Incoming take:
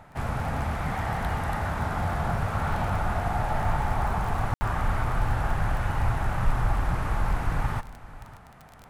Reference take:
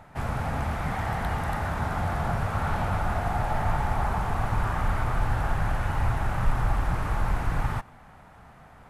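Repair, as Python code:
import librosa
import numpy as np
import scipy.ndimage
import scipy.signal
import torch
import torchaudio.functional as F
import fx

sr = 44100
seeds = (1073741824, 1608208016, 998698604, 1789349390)

y = fx.fix_declick_ar(x, sr, threshold=6.5)
y = fx.fix_ambience(y, sr, seeds[0], print_start_s=8.38, print_end_s=8.88, start_s=4.54, end_s=4.61)
y = fx.fix_echo_inverse(y, sr, delay_ms=567, level_db=-18.0)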